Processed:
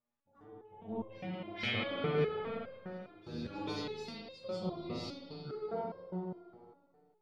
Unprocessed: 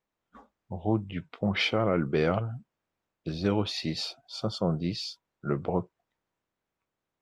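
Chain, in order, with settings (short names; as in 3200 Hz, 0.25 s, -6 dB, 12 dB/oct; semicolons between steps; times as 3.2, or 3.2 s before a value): reverse echo 0.449 s -16.5 dB; spring tank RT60 2.2 s, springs 38/51 ms, chirp 40 ms, DRR -7 dB; stepped resonator 4.9 Hz 120–530 Hz; gain -2.5 dB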